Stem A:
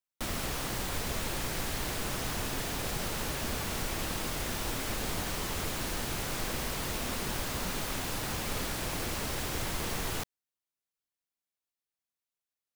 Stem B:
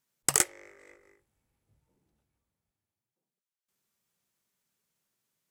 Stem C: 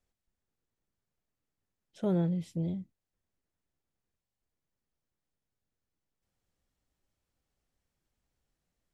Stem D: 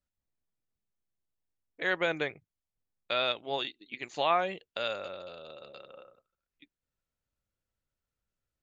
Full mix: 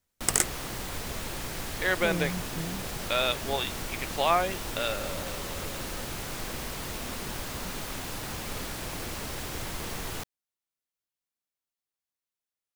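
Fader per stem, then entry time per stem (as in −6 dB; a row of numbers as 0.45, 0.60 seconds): −1.5, −0.5, −4.0, +2.5 decibels; 0.00, 0.00, 0.00, 0.00 seconds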